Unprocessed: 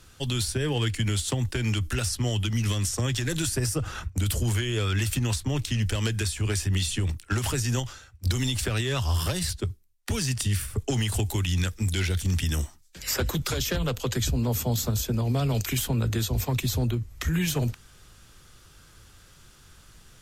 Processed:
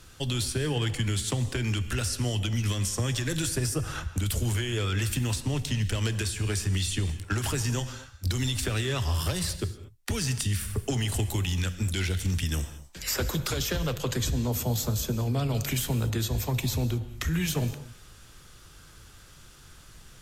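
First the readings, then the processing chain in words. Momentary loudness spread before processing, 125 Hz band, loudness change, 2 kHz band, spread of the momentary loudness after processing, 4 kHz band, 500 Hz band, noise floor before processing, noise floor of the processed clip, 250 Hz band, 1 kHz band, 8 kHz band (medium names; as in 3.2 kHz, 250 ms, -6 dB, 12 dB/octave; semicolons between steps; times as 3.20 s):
4 LU, -2.0 dB, -1.5 dB, -1.5 dB, 4 LU, -1.5 dB, -1.5 dB, -54 dBFS, -52 dBFS, -2.0 dB, -1.5 dB, -1.5 dB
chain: in parallel at +1 dB: compression, threshold -32 dBFS, peak gain reduction 11 dB; on the sum: gated-style reverb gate 260 ms flat, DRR 11 dB; trim -5 dB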